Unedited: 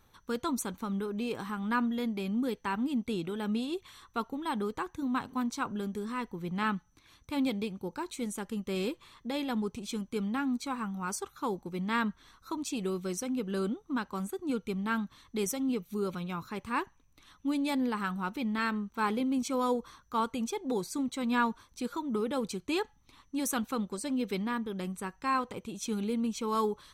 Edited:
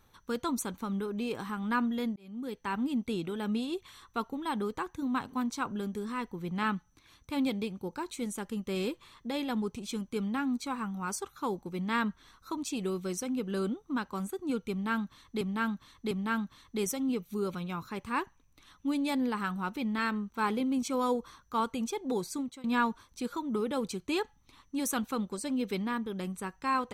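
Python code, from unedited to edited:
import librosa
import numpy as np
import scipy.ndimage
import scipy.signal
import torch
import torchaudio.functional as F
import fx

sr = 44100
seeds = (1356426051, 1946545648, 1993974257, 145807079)

y = fx.edit(x, sr, fx.fade_in_span(start_s=2.16, length_s=0.61),
    fx.repeat(start_s=14.71, length_s=0.7, count=3),
    fx.fade_out_to(start_s=20.92, length_s=0.32, floor_db=-22.0), tone=tone)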